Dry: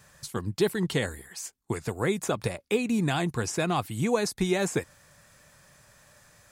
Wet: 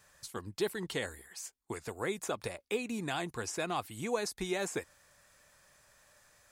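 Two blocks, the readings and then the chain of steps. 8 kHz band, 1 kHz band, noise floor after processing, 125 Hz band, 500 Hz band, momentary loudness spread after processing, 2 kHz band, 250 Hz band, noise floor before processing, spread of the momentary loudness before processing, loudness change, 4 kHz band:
-6.0 dB, -6.5 dB, -73 dBFS, -14.5 dB, -7.5 dB, 9 LU, -6.0 dB, -11.5 dB, -63 dBFS, 9 LU, -8.5 dB, -6.0 dB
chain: bell 140 Hz -9.5 dB 1.7 oct; gain -6 dB

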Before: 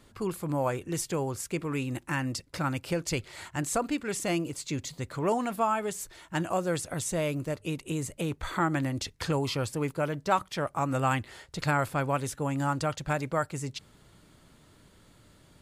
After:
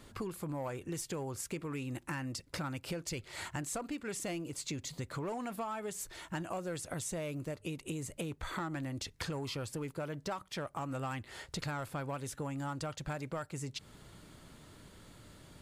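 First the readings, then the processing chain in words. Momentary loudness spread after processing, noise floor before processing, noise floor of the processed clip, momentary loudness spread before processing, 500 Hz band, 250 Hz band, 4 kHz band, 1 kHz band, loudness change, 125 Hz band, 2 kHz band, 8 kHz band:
8 LU, -59 dBFS, -62 dBFS, 7 LU, -9.5 dB, -8.5 dB, -5.5 dB, -11.5 dB, -9.0 dB, -8.5 dB, -9.0 dB, -6.0 dB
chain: in parallel at -9.5 dB: wavefolder -25.5 dBFS; on the sum: compressor 6:1, threshold -37 dBFS, peak gain reduction 16.5 dB

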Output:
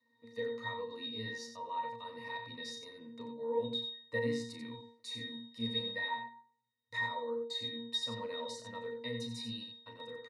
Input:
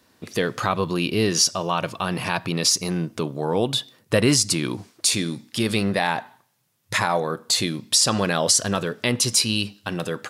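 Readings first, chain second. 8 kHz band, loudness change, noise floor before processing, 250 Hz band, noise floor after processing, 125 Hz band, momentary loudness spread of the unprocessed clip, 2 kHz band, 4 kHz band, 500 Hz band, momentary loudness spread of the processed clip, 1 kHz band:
-33.0 dB, -17.0 dB, -62 dBFS, -18.5 dB, -75 dBFS, -21.5 dB, 9 LU, -13.5 dB, -15.5 dB, -14.0 dB, 12 LU, -15.0 dB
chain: HPF 280 Hz 6 dB/oct; tilt +3 dB/oct; octave resonator A#, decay 0.52 s; loudspeakers at several distances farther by 12 m -8 dB, 31 m -8 dB; gain +6 dB

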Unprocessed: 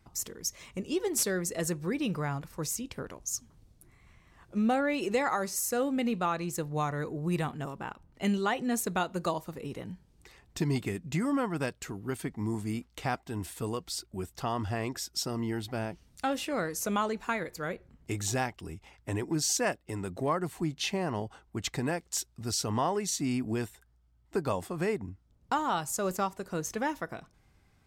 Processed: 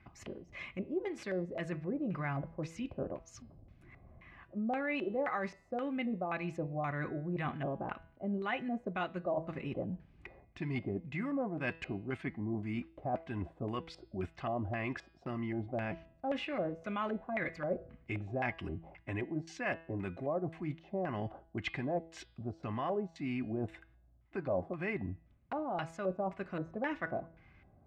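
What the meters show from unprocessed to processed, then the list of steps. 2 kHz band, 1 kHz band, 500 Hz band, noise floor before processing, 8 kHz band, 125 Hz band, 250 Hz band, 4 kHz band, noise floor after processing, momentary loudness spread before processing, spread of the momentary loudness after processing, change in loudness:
-3.5 dB, -6.5 dB, -4.0 dB, -66 dBFS, under -25 dB, -5.0 dB, -5.0 dB, -13.0 dB, -65 dBFS, 10 LU, 8 LU, -6.0 dB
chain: notch comb 460 Hz; reverse; compressor 5:1, threshold -39 dBFS, peak gain reduction 13.5 dB; reverse; LFO low-pass square 1.9 Hz 620–2300 Hz; de-hum 164.1 Hz, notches 31; gain +3.5 dB

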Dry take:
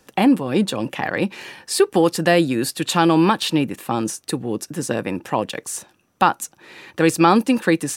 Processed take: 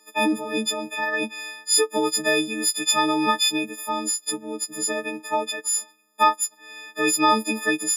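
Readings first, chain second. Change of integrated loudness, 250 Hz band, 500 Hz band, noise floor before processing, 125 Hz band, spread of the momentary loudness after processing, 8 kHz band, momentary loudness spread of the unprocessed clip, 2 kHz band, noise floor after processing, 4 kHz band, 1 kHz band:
-3.0 dB, -8.5 dB, -6.5 dB, -60 dBFS, -18.5 dB, 9 LU, +5.5 dB, 11 LU, 0.0 dB, -56 dBFS, +2.5 dB, -2.5 dB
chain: frequency quantiser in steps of 6 st; HPF 230 Hz 24 dB/oct; high shelf 11000 Hz -7 dB; gain -7 dB

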